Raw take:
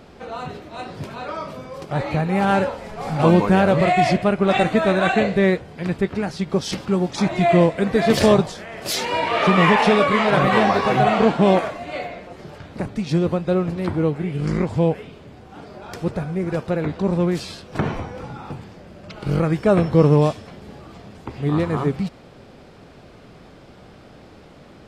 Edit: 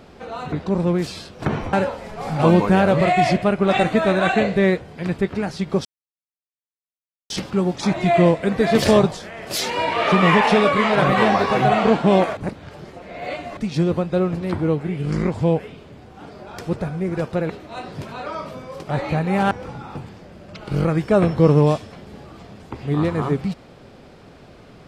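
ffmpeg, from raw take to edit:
ffmpeg -i in.wav -filter_complex "[0:a]asplit=8[link_01][link_02][link_03][link_04][link_05][link_06][link_07][link_08];[link_01]atrim=end=0.522[link_09];[link_02]atrim=start=16.848:end=18.062[link_10];[link_03]atrim=start=2.528:end=6.65,asetpts=PTS-STARTPTS,afade=type=out:start_time=4.118:duration=0.004:curve=hsin,apad=pad_dur=1.45[link_11];[link_04]atrim=start=6.65:end=11.722,asetpts=PTS-STARTPTS,afade=type=in:duration=0.004:curve=hsin[link_12];[link_05]atrim=start=11.718:end=12.922,asetpts=PTS-STARTPTS,areverse[link_13];[link_06]atrim=start=12.918:end=16.852[link_14];[link_07]atrim=start=0.518:end=2.532[link_15];[link_08]atrim=start=18.058[link_16];[link_09][link_10]acrossfade=duration=0.004:curve1=hsin:curve2=hsin[link_17];[link_11][link_12]concat=n=2:v=0:a=1[link_18];[link_17][link_18]acrossfade=duration=0.004:curve1=hsin:curve2=hsin[link_19];[link_19][link_13]acrossfade=duration=0.004:curve1=hsin:curve2=hsin[link_20];[link_20][link_14]acrossfade=duration=0.004:curve1=hsin:curve2=hsin[link_21];[link_21][link_15]acrossfade=duration=0.004:curve1=hsin:curve2=hsin[link_22];[link_22][link_16]acrossfade=duration=0.004:curve1=hsin:curve2=hsin" out.wav

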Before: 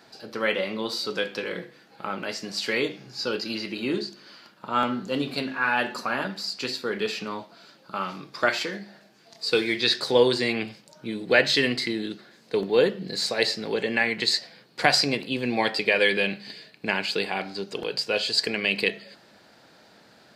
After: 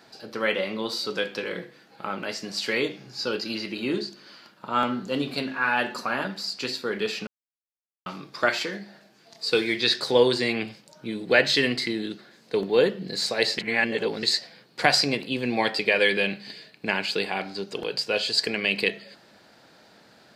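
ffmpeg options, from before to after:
ffmpeg -i in.wav -filter_complex "[0:a]asplit=5[link_01][link_02][link_03][link_04][link_05];[link_01]atrim=end=7.27,asetpts=PTS-STARTPTS,afade=type=out:start_time=7.266:duration=0.004:curve=hsin[link_06];[link_02]atrim=start=7.27:end=8.06,asetpts=PTS-STARTPTS,volume=0[link_07];[link_03]atrim=start=8.06:end=13.582,asetpts=PTS-STARTPTS,afade=type=in:duration=0.004:curve=hsin[link_08];[link_04]atrim=start=13.578:end=14.232,asetpts=PTS-STARTPTS,areverse[link_09];[link_05]atrim=start=14.228[link_10];[link_06][link_07][link_08]concat=n=3:v=0:a=1[link_11];[link_11][link_09]acrossfade=duration=0.004:curve1=hsin:curve2=hsin[link_12];[link_12][link_10]acrossfade=duration=0.004:curve1=hsin:curve2=hsin" out.wav

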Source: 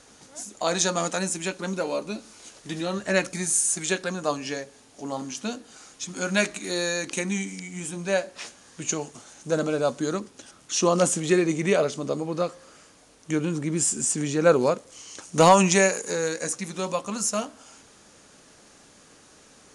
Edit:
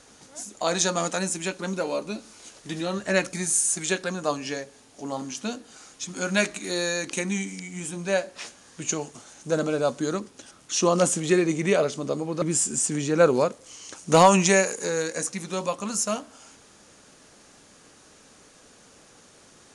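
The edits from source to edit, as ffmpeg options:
ffmpeg -i in.wav -filter_complex "[0:a]asplit=2[link_01][link_02];[link_01]atrim=end=12.422[link_03];[link_02]atrim=start=13.678[link_04];[link_03][link_04]acrossfade=duration=0.004:curve1=hsin:curve2=hsin" out.wav

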